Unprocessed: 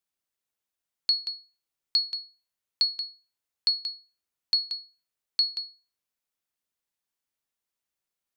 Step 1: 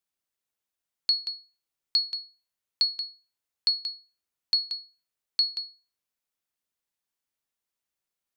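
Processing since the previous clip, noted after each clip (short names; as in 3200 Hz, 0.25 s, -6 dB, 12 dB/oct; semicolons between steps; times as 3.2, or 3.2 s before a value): nothing audible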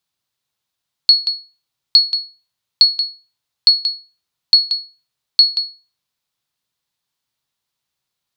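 ten-band EQ 125 Hz +12 dB, 1000 Hz +5 dB, 4000 Hz +9 dB; gain +5 dB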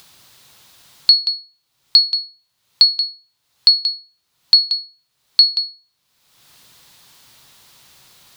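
upward compressor, threshold -25 dBFS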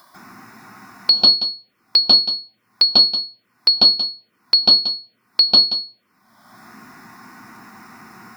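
reverb RT60 0.25 s, pre-delay 0.144 s, DRR -9 dB; envelope phaser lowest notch 430 Hz, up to 2000 Hz, full sweep at -19 dBFS; gain -1 dB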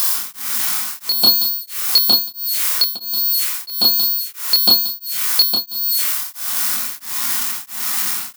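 switching spikes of -11 dBFS; doubler 27 ms -3.5 dB; beating tremolo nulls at 1.5 Hz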